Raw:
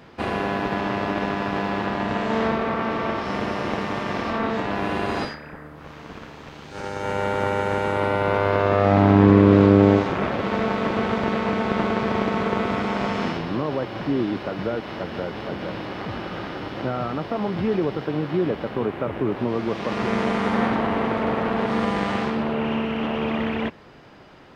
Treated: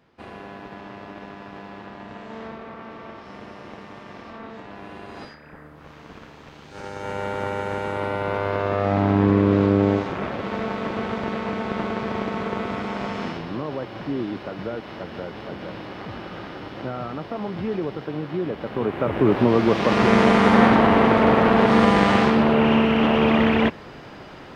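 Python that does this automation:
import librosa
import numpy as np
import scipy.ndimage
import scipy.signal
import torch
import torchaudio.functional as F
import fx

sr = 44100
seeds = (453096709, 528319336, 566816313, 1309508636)

y = fx.gain(x, sr, db=fx.line((5.11, -14.0), (5.58, -4.0), (18.51, -4.0), (19.32, 7.0)))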